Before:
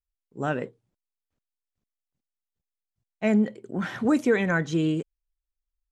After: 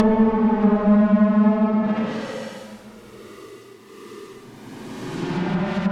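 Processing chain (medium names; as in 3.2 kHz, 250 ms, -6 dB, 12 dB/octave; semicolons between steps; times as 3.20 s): square wave that keeps the level; Paulstretch 11×, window 0.10 s, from 3.27 s; low-pass that closes with the level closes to 1 kHz, closed at -15 dBFS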